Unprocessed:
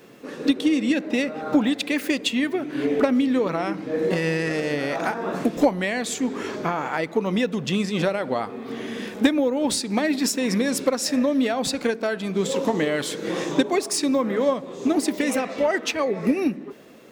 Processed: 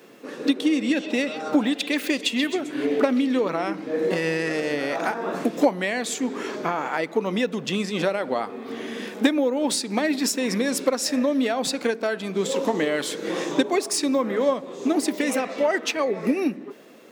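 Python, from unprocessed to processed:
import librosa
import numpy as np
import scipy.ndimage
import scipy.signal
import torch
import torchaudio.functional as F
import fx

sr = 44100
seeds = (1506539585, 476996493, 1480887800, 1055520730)

y = scipy.signal.sosfilt(scipy.signal.butter(2, 210.0, 'highpass', fs=sr, output='sos'), x)
y = fx.echo_stepped(y, sr, ms=132, hz=3700.0, octaves=0.7, feedback_pct=70, wet_db=-5, at=(0.71, 3.41))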